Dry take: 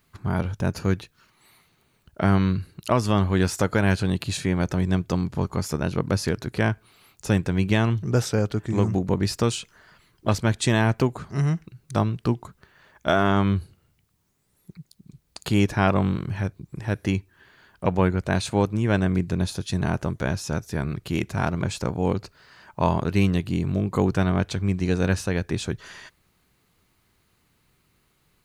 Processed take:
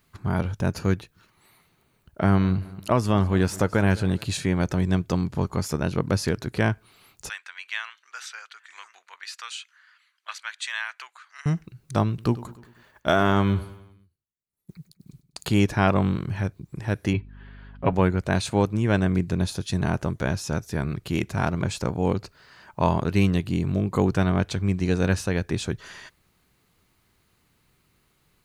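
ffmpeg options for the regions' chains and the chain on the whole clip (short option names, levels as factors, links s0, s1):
-filter_complex "[0:a]asettb=1/sr,asplit=3[s0][s1][s2];[s0]atrim=end=0.954[s3];[s1]atrim=start=0.95:end=4.25,asetpts=PTS-STARTPTS,afade=t=in:d=0.004:c=qsin,afade=t=out:st=3.296:d=0.004:c=qsin,equalizer=f=4700:w=0.48:g=-4,aecho=1:1:210|420|630:0.106|0.0403|0.0153,atrim=end_sample=145530[s4];[s2]atrim=start=4.246[s5];[s3][s4]acrossfade=d=0.004:c1=hsin:c2=qsin[s6];[s6][s5]acrossfade=d=0.004:c1=qsin:c2=hsin,asettb=1/sr,asplit=3[s7][s8][s9];[s7]atrim=end=7.294[s10];[s8]atrim=start=7.29:end=11.46,asetpts=PTS-STARTPTS,afade=t=in:d=0.004:c=qsin,afade=t=out:st=4.166:d=0.004:c=qsin,highpass=f=1400:w=0.5412,highpass=f=1400:w=1.3066,aemphasis=mode=reproduction:type=50fm,bandreject=f=5200:w=12[s11];[s9]atrim=start=11.456[s12];[s10][s11]acrossfade=d=0.004:c1=hsin:c2=qsin[s13];[s13][s12]acrossfade=d=0.004:c1=qsin:c2=hsin,asettb=1/sr,asplit=3[s14][s15][s16];[s14]atrim=end=12.084[s17];[s15]atrim=start=12.08:end=15.47,asetpts=PTS-STARTPTS,afade=t=in:d=0.004:c=qsin,afade=t=out:st=3.386:d=0.004:c=qsin,agate=range=0.0224:threshold=0.002:ratio=3:release=100:detection=peak,highshelf=f=9100:g=6.5,aecho=1:1:99|198|297|396|495:0.141|0.0777|0.0427|0.0235|0.0129,atrim=end_sample=149499[s18];[s16]atrim=start=15.466[s19];[s17][s18]acrossfade=d=0.004:c1=hsin:c2=qsin[s20];[s20][s19]acrossfade=d=0.004:c1=qsin:c2=hsin,asettb=1/sr,asplit=3[s21][s22][s23];[s21]atrim=end=17.134[s24];[s22]atrim=start=17.13:end=17.93,asetpts=PTS-STARTPTS,afade=t=in:d=0.004:c=qsin,afade=t=out:st=0.796:d=0.004:c=qsin,lowpass=f=3600:w=0.5412,lowpass=f=3600:w=1.3066,aecho=1:1:7.3:0.62,atrim=end_sample=35280,aeval=exprs='val(0)+0.00708*(sin(2*PI*50*n/s)+sin(2*PI*2*50*n/s)/2+sin(2*PI*3*50*n/s)/3+sin(2*PI*4*50*n/s)/4+sin(2*PI*5*50*n/s)/5)':c=same[s25];[s23]atrim=start=17.926[s26];[s24][s25]acrossfade=d=0.004:c1=hsin:c2=qsin[s27];[s27][s26]acrossfade=d=0.004:c1=qsin:c2=hsin"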